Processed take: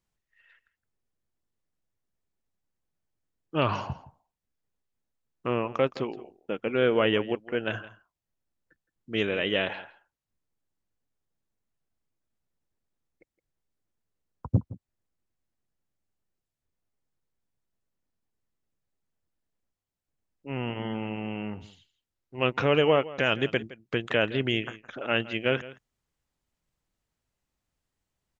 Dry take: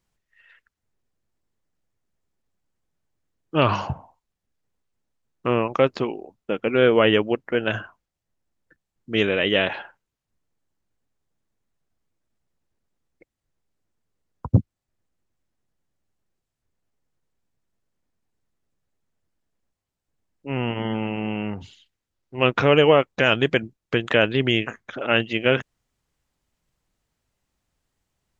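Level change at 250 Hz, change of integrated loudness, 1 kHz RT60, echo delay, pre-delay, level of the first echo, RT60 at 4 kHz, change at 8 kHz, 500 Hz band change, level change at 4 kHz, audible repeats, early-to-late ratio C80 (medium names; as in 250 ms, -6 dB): -6.5 dB, -6.5 dB, no reverb, 166 ms, no reverb, -18.0 dB, no reverb, no reading, -6.5 dB, -6.5 dB, 1, no reverb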